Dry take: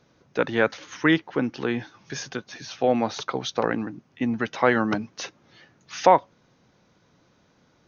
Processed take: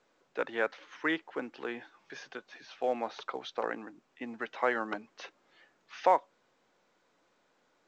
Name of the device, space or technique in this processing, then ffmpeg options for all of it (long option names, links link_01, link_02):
telephone: -af "highpass=400,lowpass=3200,volume=-8dB" -ar 16000 -c:a pcm_mulaw